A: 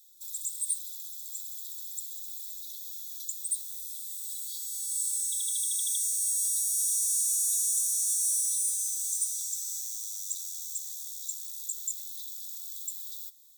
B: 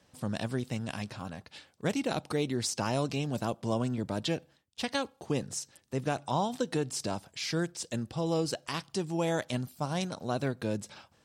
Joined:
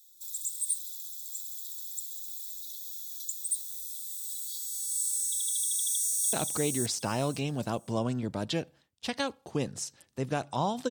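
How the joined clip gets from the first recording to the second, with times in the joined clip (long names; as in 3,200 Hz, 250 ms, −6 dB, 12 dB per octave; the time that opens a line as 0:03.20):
A
0:05.65–0:06.33: delay throw 530 ms, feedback 20%, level −5 dB
0:06.33: continue with B from 0:02.08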